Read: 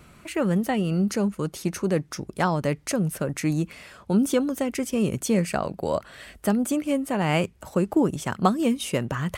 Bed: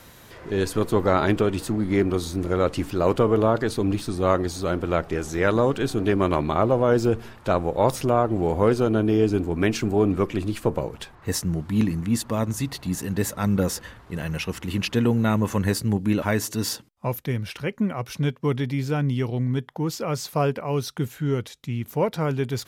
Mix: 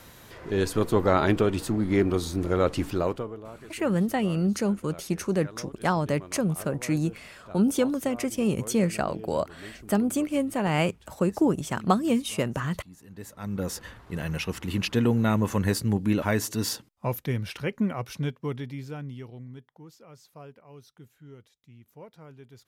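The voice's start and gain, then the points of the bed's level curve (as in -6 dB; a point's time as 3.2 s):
3.45 s, -1.5 dB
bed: 2.96 s -1.5 dB
3.42 s -23 dB
12.96 s -23 dB
13.88 s -2 dB
17.9 s -2 dB
20 s -23.5 dB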